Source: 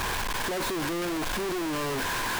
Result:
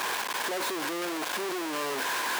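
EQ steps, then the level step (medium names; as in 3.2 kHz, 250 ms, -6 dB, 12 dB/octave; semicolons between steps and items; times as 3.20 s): high-pass 370 Hz 12 dB/octave; 0.0 dB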